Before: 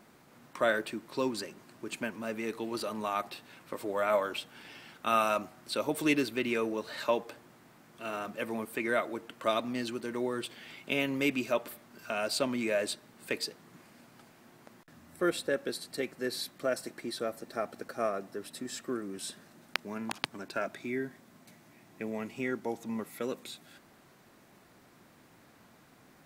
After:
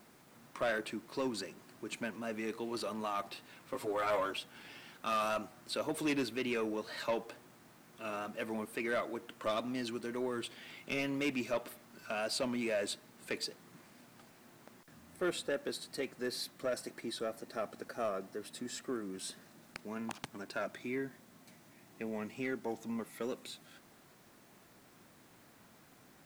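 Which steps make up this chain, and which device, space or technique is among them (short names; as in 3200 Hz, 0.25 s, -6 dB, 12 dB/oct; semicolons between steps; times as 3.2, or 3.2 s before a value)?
3.72–4.31 comb 7.4 ms, depth 94%; compact cassette (soft clip -24.5 dBFS, distortion -13 dB; LPF 12000 Hz; wow and flutter; white noise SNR 29 dB); gain -2.5 dB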